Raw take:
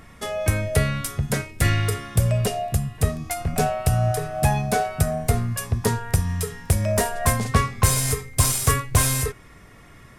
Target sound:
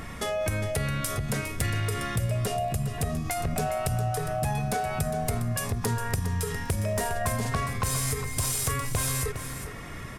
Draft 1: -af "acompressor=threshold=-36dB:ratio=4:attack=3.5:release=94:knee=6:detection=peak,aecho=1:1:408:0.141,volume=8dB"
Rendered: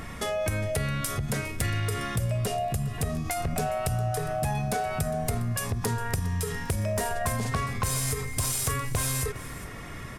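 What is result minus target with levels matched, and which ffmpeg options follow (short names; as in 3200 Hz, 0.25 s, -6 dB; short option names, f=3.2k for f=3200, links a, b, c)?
echo-to-direct -6.5 dB
-af "acompressor=threshold=-36dB:ratio=4:attack=3.5:release=94:knee=6:detection=peak,aecho=1:1:408:0.299,volume=8dB"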